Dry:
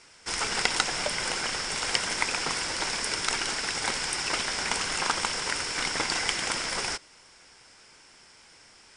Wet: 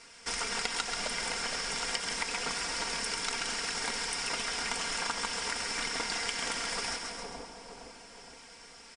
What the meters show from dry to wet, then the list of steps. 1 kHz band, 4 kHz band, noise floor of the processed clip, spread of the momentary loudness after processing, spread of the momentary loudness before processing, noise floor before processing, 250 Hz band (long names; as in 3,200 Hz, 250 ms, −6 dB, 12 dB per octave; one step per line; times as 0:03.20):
−4.5 dB, −4.5 dB, −52 dBFS, 16 LU, 3 LU, −55 dBFS, −4.5 dB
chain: comb filter 4.3 ms, depth 57%
on a send: echo with a time of its own for lows and highs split 930 Hz, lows 465 ms, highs 134 ms, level −8 dB
on the sum: downward compressor 2.5 to 1, threshold −34 dBFS, peak gain reduction 11 dB